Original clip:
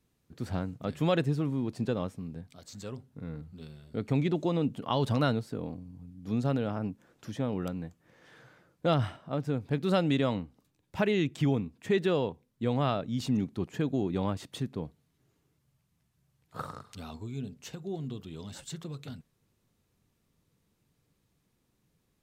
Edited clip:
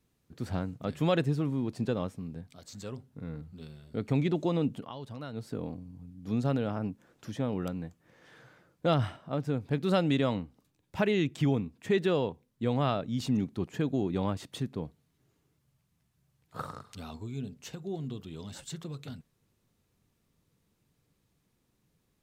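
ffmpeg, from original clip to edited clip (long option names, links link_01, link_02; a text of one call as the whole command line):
ffmpeg -i in.wav -filter_complex "[0:a]asplit=3[link_01][link_02][link_03];[link_01]atrim=end=4.92,asetpts=PTS-STARTPTS,afade=type=out:start_time=4.77:duration=0.15:silence=0.188365[link_04];[link_02]atrim=start=4.92:end=5.32,asetpts=PTS-STARTPTS,volume=-14.5dB[link_05];[link_03]atrim=start=5.32,asetpts=PTS-STARTPTS,afade=type=in:duration=0.15:silence=0.188365[link_06];[link_04][link_05][link_06]concat=n=3:v=0:a=1" out.wav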